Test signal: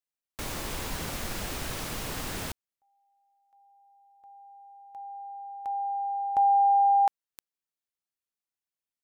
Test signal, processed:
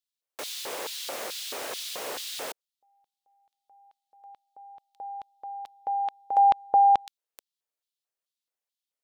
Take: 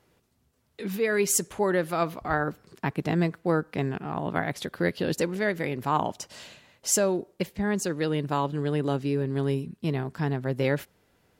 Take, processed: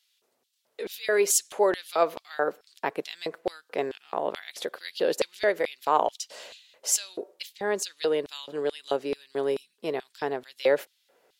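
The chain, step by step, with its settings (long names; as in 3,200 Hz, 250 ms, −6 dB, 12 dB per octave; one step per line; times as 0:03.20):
auto-filter high-pass square 2.3 Hz 500–3,600 Hz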